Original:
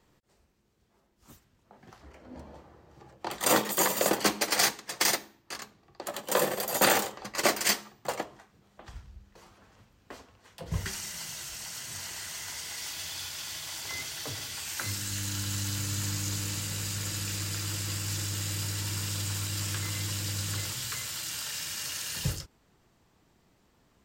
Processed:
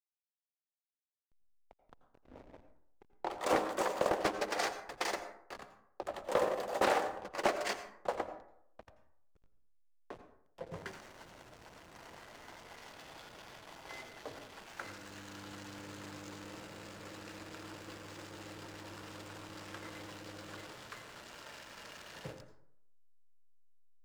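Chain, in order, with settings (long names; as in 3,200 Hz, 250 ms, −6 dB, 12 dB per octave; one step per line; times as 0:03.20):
spectral tilt +3 dB per octave
in parallel at 0 dB: downward compressor, threshold −35 dBFS, peak gain reduction 20.5 dB
on the sum: resonant band-pass 500 Hz, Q 0.97
slack as between gear wheels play −39 dBFS
on a send at −10 dB: convolution reverb RT60 0.70 s, pre-delay 77 ms
on the sum: highs frequency-modulated by the lows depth 0.45 ms
level −1 dB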